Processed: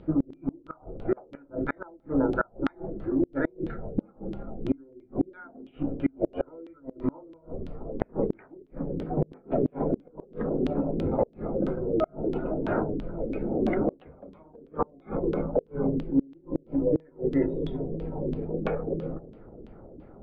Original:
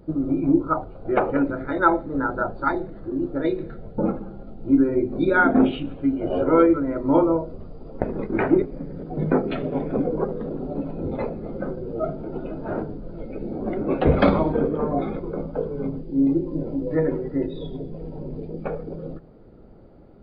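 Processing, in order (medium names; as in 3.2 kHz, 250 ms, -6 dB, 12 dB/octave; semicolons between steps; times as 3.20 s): LFO low-pass saw down 3 Hz 280–3400 Hz; inverted gate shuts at -13 dBFS, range -33 dB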